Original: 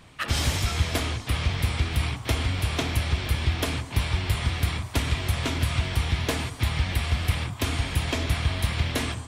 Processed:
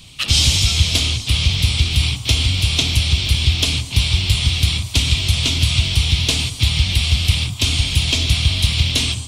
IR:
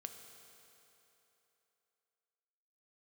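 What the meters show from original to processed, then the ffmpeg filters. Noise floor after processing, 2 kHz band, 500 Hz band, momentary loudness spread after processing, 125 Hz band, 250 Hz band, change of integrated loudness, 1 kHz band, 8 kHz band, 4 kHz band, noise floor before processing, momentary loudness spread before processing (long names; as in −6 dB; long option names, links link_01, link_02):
−31 dBFS, +7.0 dB, −1.5 dB, 3 LU, +8.0 dB, +4.0 dB, +10.0 dB, −2.5 dB, +13.0 dB, +15.5 dB, −40 dBFS, 2 LU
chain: -filter_complex "[0:a]aexciter=amount=15.4:drive=6:freq=2700,acrossover=split=9600[link_01][link_02];[link_02]acompressor=threshold=-29dB:ratio=4:attack=1:release=60[link_03];[link_01][link_03]amix=inputs=2:normalize=0,bass=frequency=250:gain=11,treble=frequency=4000:gain=-11,volume=-2.5dB"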